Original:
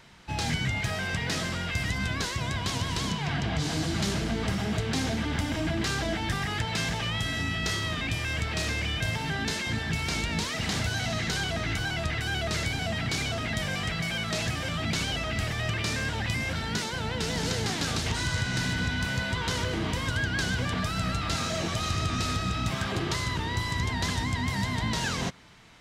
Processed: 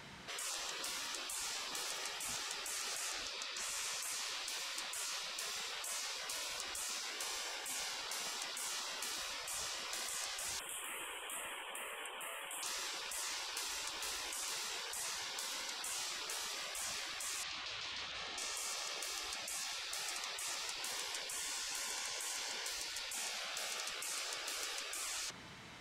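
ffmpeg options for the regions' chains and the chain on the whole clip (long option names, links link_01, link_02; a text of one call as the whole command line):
ffmpeg -i in.wav -filter_complex "[0:a]asettb=1/sr,asplit=3[link_01][link_02][link_03];[link_01]atrim=end=10.594[link_04];[link_02]atrim=start=10.59:end=12.63,asetpts=PTS-STARTPTS,afade=type=in:duration=0.004:curve=qsin,afade=type=out:start_time=2.036:duration=0.004:curve=qsin,asubboost=boost=7.5:cutoff=180,asuperstop=centerf=5000:order=12:qfactor=1[link_05];[link_03]atrim=start=12.626[link_06];[link_04][link_05]acrossfade=duration=0.004:curve1=hsin:curve2=qsin[link_07];[link_07][link_06]acrossfade=duration=0.004:curve1=qsin:curve2=hsin,asettb=1/sr,asplit=3[link_08][link_09][link_10];[link_08]atrim=end=17.434[link_11];[link_09]atrim=start=17.43:end=18.38,asetpts=PTS-STARTPTS,afade=type=in:duration=0.004:curve=qsin,afade=type=out:start_time=0.946:duration=0.004:curve=qsin,aeval=exprs='val(0)+0.0112*(sin(2*PI*50*n/s)+sin(2*PI*2*50*n/s)/2+sin(2*PI*3*50*n/s)/3+sin(2*PI*4*50*n/s)/4+sin(2*PI*5*50*n/s)/5)':channel_layout=same,highpass=190,lowpass=2300,bandreject=frequency=60:width_type=h:width=6,bandreject=frequency=120:width_type=h:width=6,bandreject=frequency=180:width_type=h:width=6,bandreject=frequency=240:width_type=h:width=6,bandreject=frequency=300:width_type=h:width=6,bandreject=frequency=360:width_type=h:width=6,bandreject=frequency=420:width_type=h:width=6[link_12];[link_10]atrim=start=18.376[link_13];[link_11][link_12]acrossfade=duration=0.004:curve1=hsin:curve2=qsin[link_14];[link_14][link_13]acrossfade=duration=0.004:curve1=qsin:curve2=hsin,highpass=frequency=110:poles=1,afftfilt=real='re*lt(hypot(re,im),0.02)':imag='im*lt(hypot(re,im),0.02)':win_size=1024:overlap=0.75,volume=1.5dB" out.wav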